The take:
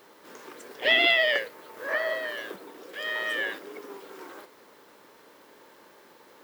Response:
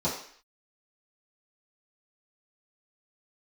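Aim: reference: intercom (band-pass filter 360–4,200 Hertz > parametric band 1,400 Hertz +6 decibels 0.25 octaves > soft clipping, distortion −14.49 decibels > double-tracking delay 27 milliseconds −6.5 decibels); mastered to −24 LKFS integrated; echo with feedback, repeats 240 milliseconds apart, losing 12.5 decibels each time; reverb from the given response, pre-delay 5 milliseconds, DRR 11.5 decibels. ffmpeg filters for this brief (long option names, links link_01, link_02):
-filter_complex "[0:a]aecho=1:1:240|480|720:0.237|0.0569|0.0137,asplit=2[link_01][link_02];[1:a]atrim=start_sample=2205,adelay=5[link_03];[link_02][link_03]afir=irnorm=-1:irlink=0,volume=-21dB[link_04];[link_01][link_04]amix=inputs=2:normalize=0,highpass=360,lowpass=4200,equalizer=frequency=1400:width_type=o:width=0.25:gain=6,asoftclip=threshold=-18dB,asplit=2[link_05][link_06];[link_06]adelay=27,volume=-6.5dB[link_07];[link_05][link_07]amix=inputs=2:normalize=0,volume=3dB"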